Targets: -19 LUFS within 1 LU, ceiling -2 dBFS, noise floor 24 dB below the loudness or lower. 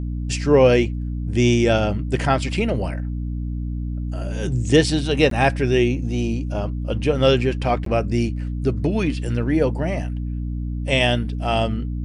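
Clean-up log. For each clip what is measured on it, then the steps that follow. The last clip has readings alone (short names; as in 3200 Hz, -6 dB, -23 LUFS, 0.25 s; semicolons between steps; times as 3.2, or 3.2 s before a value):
dropouts 2; longest dropout 13 ms; hum 60 Hz; harmonics up to 300 Hz; hum level -23 dBFS; loudness -21.0 LUFS; peak -2.5 dBFS; loudness target -19.0 LUFS
-> interpolate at 5.3/7.85, 13 ms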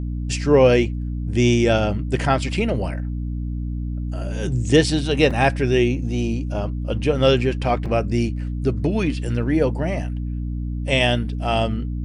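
dropouts 0; hum 60 Hz; harmonics up to 300 Hz; hum level -23 dBFS
-> notches 60/120/180/240/300 Hz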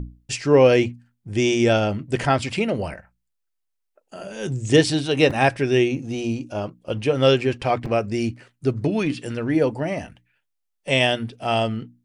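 hum none; loudness -21.5 LUFS; peak -3.0 dBFS; loudness target -19.0 LUFS
-> gain +2.5 dB; limiter -2 dBFS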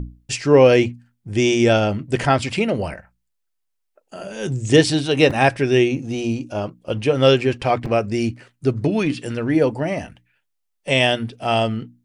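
loudness -19.0 LUFS; peak -2.0 dBFS; noise floor -74 dBFS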